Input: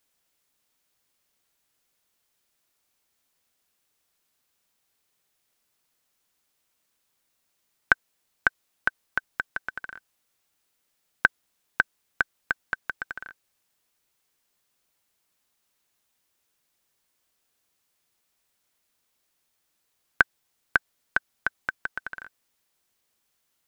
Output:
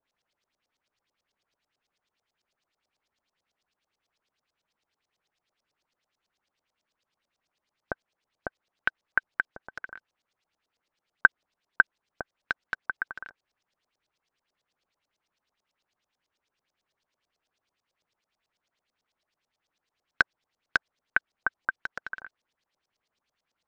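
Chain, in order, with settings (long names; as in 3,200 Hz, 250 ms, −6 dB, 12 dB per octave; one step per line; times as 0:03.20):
floating-point word with a short mantissa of 2 bits
auto-filter low-pass saw up 9.1 Hz 540–5,900 Hz
level −4 dB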